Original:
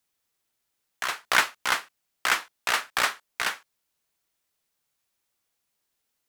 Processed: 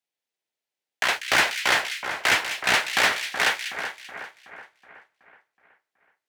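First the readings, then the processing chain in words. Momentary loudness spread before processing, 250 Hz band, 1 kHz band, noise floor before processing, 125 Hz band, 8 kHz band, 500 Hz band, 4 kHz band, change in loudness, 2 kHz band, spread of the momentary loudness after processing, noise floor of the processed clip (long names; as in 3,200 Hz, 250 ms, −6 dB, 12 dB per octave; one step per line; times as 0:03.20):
9 LU, +8.5 dB, +2.5 dB, −79 dBFS, +9.5 dB, +3.0 dB, +7.5 dB, +5.5 dB, +4.0 dB, +5.0 dB, 15 LU, below −85 dBFS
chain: low-shelf EQ 390 Hz −6.5 dB
mid-hump overdrive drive 14 dB, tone 1,100 Hz, clips at −3.5 dBFS
parametric band 1,200 Hz −13 dB 0.77 octaves
leveller curve on the samples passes 3
high-pass filter 80 Hz
on a send: echo with a time of its own for lows and highs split 2,000 Hz, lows 373 ms, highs 194 ms, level −8 dB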